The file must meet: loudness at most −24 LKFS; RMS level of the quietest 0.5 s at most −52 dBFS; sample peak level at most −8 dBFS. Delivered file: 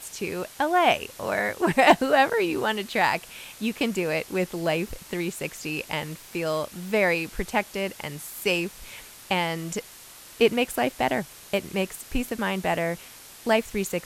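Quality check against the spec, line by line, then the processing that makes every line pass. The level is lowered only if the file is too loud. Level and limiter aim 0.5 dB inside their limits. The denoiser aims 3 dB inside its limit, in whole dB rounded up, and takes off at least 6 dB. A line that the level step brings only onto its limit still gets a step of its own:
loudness −25.5 LKFS: in spec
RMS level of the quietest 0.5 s −47 dBFS: out of spec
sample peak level −7.0 dBFS: out of spec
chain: broadband denoise 8 dB, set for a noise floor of −47 dBFS
brickwall limiter −8.5 dBFS

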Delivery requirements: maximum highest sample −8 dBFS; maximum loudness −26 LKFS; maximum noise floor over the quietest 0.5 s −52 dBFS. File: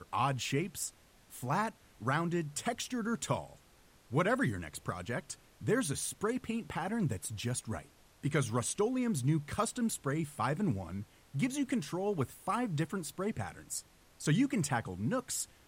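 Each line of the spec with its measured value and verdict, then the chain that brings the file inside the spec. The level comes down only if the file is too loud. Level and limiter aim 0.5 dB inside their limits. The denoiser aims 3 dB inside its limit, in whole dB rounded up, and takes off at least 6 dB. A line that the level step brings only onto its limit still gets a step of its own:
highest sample −18.5 dBFS: in spec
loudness −35.0 LKFS: in spec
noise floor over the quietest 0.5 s −63 dBFS: in spec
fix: no processing needed

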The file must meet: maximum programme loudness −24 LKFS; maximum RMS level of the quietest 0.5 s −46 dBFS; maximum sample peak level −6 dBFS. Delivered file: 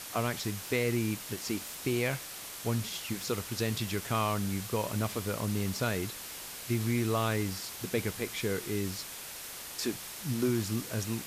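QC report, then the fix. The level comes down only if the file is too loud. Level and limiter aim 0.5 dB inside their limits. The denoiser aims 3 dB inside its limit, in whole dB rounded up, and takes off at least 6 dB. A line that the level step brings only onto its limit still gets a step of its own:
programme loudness −33.0 LKFS: in spec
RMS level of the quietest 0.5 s −43 dBFS: out of spec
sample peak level −17.5 dBFS: in spec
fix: broadband denoise 6 dB, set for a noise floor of −43 dBFS

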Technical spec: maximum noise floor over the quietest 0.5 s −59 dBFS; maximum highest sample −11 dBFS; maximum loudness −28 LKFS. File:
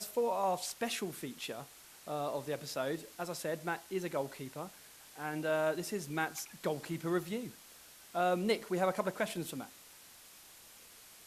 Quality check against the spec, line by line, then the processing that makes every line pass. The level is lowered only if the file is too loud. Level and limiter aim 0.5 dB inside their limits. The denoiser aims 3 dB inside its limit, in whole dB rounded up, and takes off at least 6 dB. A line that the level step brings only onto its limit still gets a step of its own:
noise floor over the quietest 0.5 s −57 dBFS: out of spec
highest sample −18.0 dBFS: in spec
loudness −36.5 LKFS: in spec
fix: broadband denoise 6 dB, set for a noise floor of −57 dBFS

